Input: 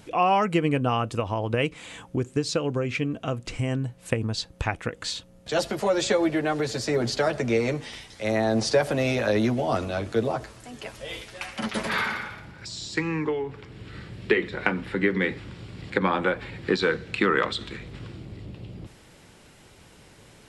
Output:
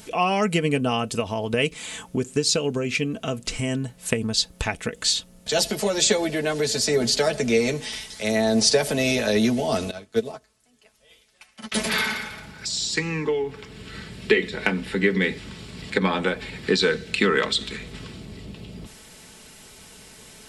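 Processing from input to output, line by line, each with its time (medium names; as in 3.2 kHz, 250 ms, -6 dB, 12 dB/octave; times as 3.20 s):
9.91–11.72 s: upward expansion 2.5:1, over -36 dBFS
whole clip: treble shelf 3.5 kHz +11.5 dB; comb 4.6 ms, depth 46%; dynamic bell 1.2 kHz, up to -6 dB, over -38 dBFS, Q 1.2; trim +1.5 dB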